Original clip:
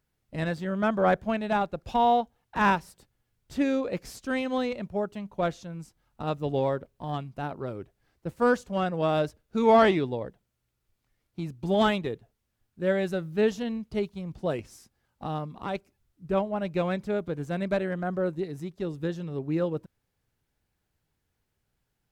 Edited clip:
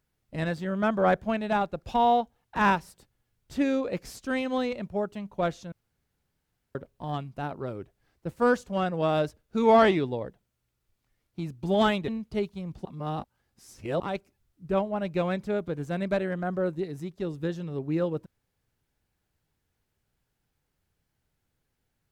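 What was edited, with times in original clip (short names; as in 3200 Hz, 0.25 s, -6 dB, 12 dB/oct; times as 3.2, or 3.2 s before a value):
5.72–6.75 room tone
12.08–13.68 cut
14.45–15.6 reverse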